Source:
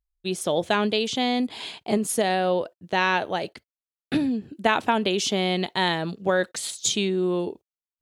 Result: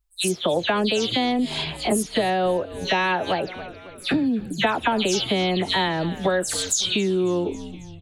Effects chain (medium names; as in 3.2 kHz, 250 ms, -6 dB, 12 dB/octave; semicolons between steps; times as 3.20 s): delay that grows with frequency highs early, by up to 141 ms; on a send: frequency-shifting echo 272 ms, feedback 53%, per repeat -93 Hz, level -20 dB; on the sum: compression 3:1, threshold -30 dBFS, peak gain reduction 11 dB; trim +9 dB